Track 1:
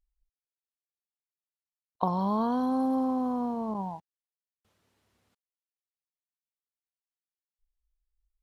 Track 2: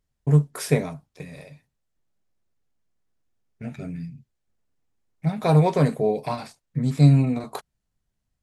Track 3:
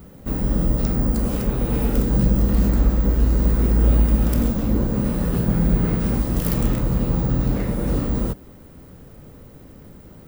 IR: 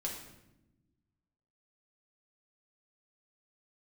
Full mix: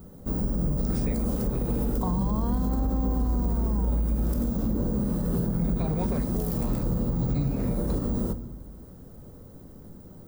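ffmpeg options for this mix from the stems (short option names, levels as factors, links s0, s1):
-filter_complex "[0:a]asubboost=boost=11:cutoff=120,volume=0.944[s0];[1:a]adelay=350,volume=0.299[s1];[2:a]equalizer=f=2400:w=1.1:g=-12,volume=0.531,asplit=2[s2][s3];[s3]volume=0.398[s4];[3:a]atrim=start_sample=2205[s5];[s4][s5]afir=irnorm=-1:irlink=0[s6];[s0][s1][s2][s6]amix=inputs=4:normalize=0,alimiter=limit=0.126:level=0:latency=1:release=69"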